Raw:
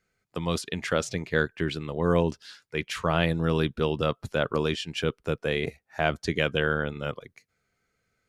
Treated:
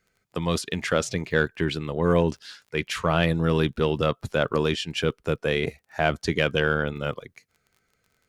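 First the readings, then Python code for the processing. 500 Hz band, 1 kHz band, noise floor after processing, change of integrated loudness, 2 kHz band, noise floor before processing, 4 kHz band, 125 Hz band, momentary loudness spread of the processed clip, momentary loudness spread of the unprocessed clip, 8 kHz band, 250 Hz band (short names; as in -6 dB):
+3.0 dB, +2.5 dB, -73 dBFS, +2.5 dB, +2.5 dB, -78 dBFS, +2.5 dB, +3.0 dB, 9 LU, 9 LU, +3.5 dB, +2.5 dB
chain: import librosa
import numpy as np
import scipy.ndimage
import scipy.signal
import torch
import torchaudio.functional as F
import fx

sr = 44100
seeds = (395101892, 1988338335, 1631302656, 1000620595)

p1 = fx.dmg_crackle(x, sr, seeds[0], per_s=25.0, level_db=-49.0)
p2 = 10.0 ** (-19.0 / 20.0) * np.tanh(p1 / 10.0 ** (-19.0 / 20.0))
y = p1 + F.gain(torch.from_numpy(p2), -6.0).numpy()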